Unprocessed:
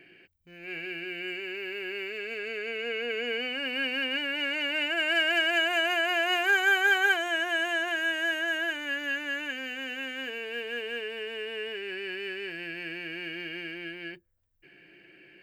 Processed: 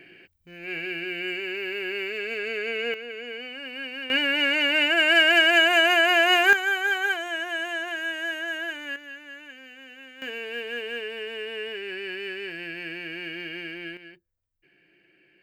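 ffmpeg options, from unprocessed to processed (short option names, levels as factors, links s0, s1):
-af "asetnsamples=n=441:p=0,asendcmd='2.94 volume volume -5dB;4.1 volume volume 7.5dB;6.53 volume volume -1.5dB;8.96 volume volume -10dB;10.22 volume volume 2dB;13.97 volume volume -7dB',volume=1.78"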